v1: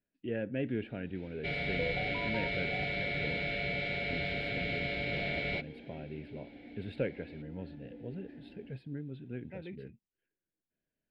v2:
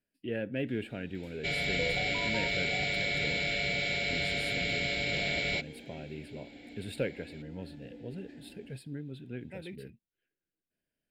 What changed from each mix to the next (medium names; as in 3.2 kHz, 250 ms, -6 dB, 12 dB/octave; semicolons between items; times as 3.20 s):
master: remove distance through air 320 m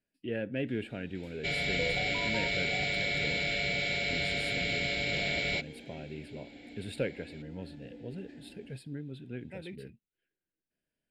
master: add low-pass 11 kHz 12 dB/octave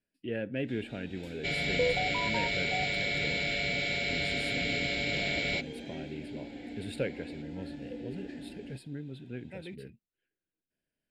first sound +7.5 dB